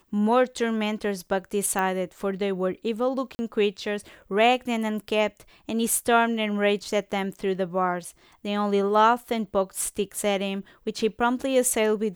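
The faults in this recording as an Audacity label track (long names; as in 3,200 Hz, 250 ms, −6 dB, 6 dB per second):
1.790000	1.790000	click −14 dBFS
3.350000	3.390000	drop-out 40 ms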